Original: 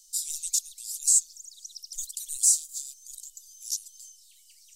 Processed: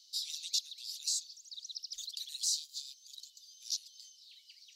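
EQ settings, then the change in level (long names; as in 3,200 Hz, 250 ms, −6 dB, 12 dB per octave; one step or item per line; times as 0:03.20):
high-pass filter 89 Hz 12 dB per octave
high shelf with overshoot 6,000 Hz −13.5 dB, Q 3
0.0 dB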